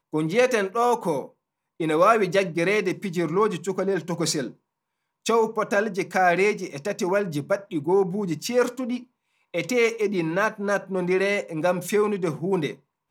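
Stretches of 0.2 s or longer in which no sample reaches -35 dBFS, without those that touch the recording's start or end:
1.26–1.8
4.51–5.26
9–9.54

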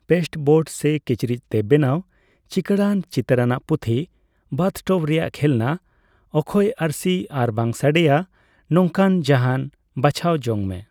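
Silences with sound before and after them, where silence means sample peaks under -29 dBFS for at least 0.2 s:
2–2.52
4.04–4.52
5.76–6.34
8.23–8.71
9.68–9.97

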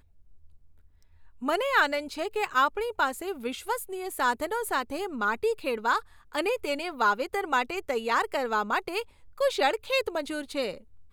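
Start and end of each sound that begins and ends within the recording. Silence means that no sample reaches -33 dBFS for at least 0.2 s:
1.43–6
6.35–9.02
9.4–10.75

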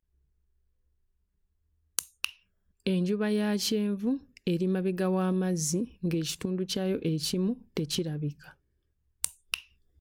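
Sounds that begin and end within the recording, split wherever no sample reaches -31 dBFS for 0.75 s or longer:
1.99–8.3

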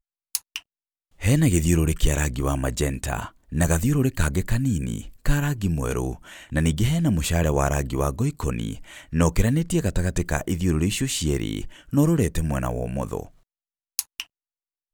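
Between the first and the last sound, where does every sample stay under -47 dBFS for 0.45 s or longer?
0.61–1.19
13.31–13.99

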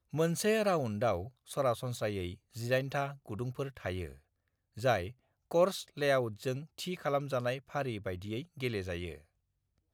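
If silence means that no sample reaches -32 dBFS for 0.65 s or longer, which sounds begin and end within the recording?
4.84–9.12

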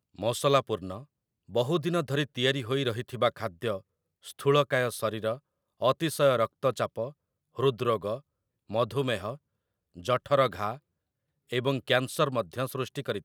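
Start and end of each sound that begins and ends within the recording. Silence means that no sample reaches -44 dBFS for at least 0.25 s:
1.49–3.81
4.25–5.38
5.8–7.11
7.57–8.19
8.7–9.36
9.96–10.77

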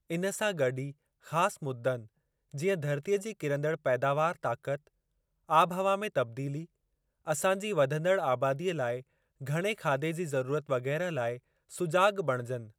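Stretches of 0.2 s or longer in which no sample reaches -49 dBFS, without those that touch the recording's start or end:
0.92–1.25
2.06–2.52
4.87–5.49
6.65–7.27
9.02–9.41
11.39–11.71

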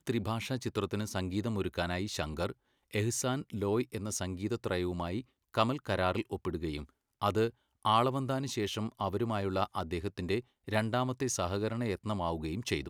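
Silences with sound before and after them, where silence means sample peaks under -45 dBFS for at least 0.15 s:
2.52–2.93
5.21–5.54
6.84–7.22
7.5–7.85
10.41–10.68

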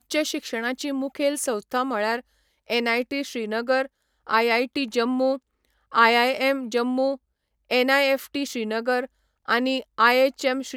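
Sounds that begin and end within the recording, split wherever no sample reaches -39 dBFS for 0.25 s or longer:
2.7–3.86
4.27–5.38
5.92–7.16
7.7–9.06

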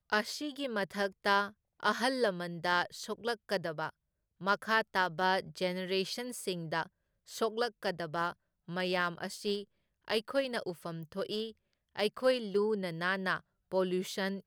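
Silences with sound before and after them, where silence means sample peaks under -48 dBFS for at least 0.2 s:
1.5–1.8
3.9–4.41
6.87–7.28
8.33–8.68
9.64–10.08
11.51–11.95
13.4–13.72

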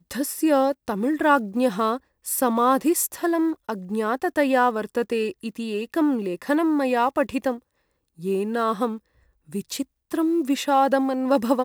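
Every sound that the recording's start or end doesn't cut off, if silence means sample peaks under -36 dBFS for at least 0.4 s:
8.2–8.97

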